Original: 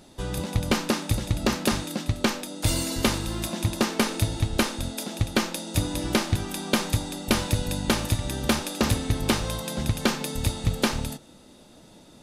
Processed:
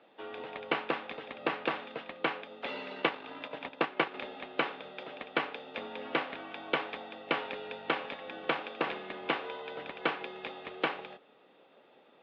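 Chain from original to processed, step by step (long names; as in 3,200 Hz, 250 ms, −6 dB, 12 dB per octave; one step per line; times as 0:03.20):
0:02.90–0:04.14: transient designer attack +2 dB, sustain −8 dB
single-sideband voice off tune −69 Hz 430–3,100 Hz
harmonic and percussive parts rebalanced percussive +3 dB
level −5.5 dB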